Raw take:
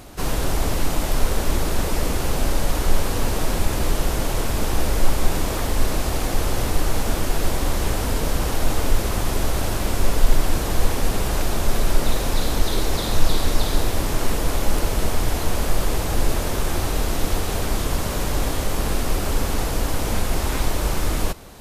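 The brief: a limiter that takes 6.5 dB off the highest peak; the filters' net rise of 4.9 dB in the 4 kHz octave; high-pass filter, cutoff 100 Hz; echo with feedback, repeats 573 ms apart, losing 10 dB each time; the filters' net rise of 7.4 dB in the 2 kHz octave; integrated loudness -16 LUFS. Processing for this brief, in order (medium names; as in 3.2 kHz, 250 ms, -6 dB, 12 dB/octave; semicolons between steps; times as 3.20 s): high-pass 100 Hz; peaking EQ 2 kHz +8.5 dB; peaking EQ 4 kHz +3.5 dB; peak limiter -17 dBFS; feedback delay 573 ms, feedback 32%, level -10 dB; trim +9.5 dB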